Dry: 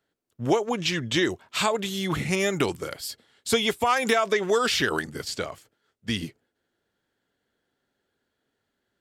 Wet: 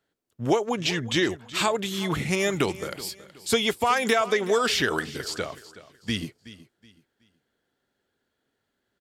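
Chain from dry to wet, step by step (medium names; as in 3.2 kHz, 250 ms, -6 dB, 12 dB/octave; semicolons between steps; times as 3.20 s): feedback delay 373 ms, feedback 31%, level -17 dB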